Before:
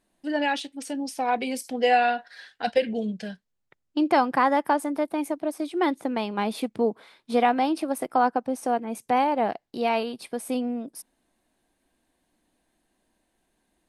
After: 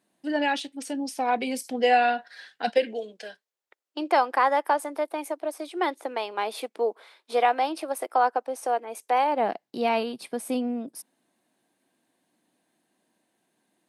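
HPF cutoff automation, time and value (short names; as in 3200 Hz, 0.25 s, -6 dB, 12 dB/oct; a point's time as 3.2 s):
HPF 24 dB/oct
2.53 s 110 Hz
3.01 s 390 Hz
9.23 s 390 Hz
9.7 s 130 Hz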